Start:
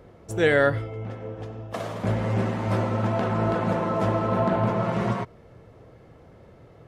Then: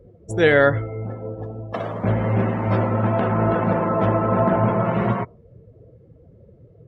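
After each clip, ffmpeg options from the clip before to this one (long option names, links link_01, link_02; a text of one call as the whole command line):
ffmpeg -i in.wav -af "afftdn=noise_reduction=23:noise_floor=-42,volume=4.5dB" out.wav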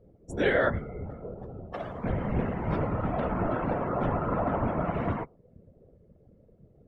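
ffmpeg -i in.wav -af "afftfilt=real='hypot(re,im)*cos(2*PI*random(0))':imag='hypot(re,im)*sin(2*PI*random(1))':win_size=512:overlap=0.75,volume=-3dB" out.wav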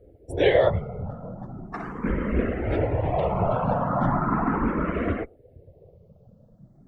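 ffmpeg -i in.wav -filter_complex "[0:a]asplit=2[link_01][link_02];[link_02]afreqshift=0.38[link_03];[link_01][link_03]amix=inputs=2:normalize=1,volume=7.5dB" out.wav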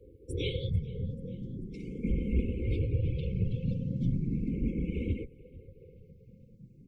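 ffmpeg -i in.wav -filter_complex "[0:a]acrossover=split=200|3000[link_01][link_02][link_03];[link_02]acompressor=threshold=-36dB:ratio=6[link_04];[link_01][link_04][link_03]amix=inputs=3:normalize=0,asplit=5[link_05][link_06][link_07][link_08][link_09];[link_06]adelay=439,afreqshift=-39,volume=-23.5dB[link_10];[link_07]adelay=878,afreqshift=-78,volume=-28.4dB[link_11];[link_08]adelay=1317,afreqshift=-117,volume=-33.3dB[link_12];[link_09]adelay=1756,afreqshift=-156,volume=-38.1dB[link_13];[link_05][link_10][link_11][link_12][link_13]amix=inputs=5:normalize=0,afftfilt=real='re*(1-between(b*sr/4096,540,2100))':imag='im*(1-between(b*sr/4096,540,2100))':win_size=4096:overlap=0.75,volume=-1.5dB" out.wav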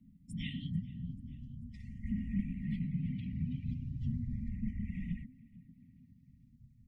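ffmpeg -i in.wav -af "afreqshift=-260,volume=-6.5dB" out.wav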